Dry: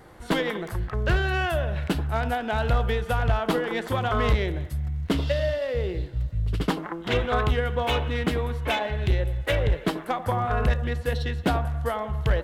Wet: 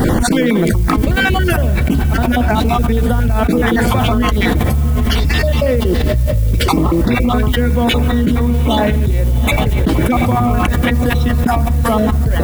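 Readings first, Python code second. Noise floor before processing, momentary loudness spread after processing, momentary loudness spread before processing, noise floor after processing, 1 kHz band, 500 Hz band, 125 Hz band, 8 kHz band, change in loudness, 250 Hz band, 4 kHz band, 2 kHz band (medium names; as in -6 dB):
-39 dBFS, 1 LU, 5 LU, -15 dBFS, +10.0 dB, +9.0 dB, +12.5 dB, +17.5 dB, +12.0 dB, +16.5 dB, +10.5 dB, +10.0 dB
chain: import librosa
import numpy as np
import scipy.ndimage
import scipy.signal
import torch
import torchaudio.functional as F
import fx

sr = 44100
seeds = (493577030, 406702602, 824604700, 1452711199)

p1 = fx.spec_dropout(x, sr, seeds[0], share_pct=33)
p2 = fx.low_shelf(p1, sr, hz=410.0, db=10.0)
p3 = p2 + 10.0 ** (-23.5 / 20.0) * np.pad(p2, (int(237 * sr / 1000.0), 0))[:len(p2)]
p4 = fx.mod_noise(p3, sr, seeds[1], snr_db=32)
p5 = fx.high_shelf(p4, sr, hz=6200.0, db=8.5)
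p6 = fx.small_body(p5, sr, hz=(240.0, 2300.0), ring_ms=70, db=12)
p7 = p6 + fx.echo_diffused(p6, sr, ms=771, feedback_pct=41, wet_db=-13, dry=0)
p8 = fx.env_flatten(p7, sr, amount_pct=100)
y = p8 * librosa.db_to_amplitude(-6.5)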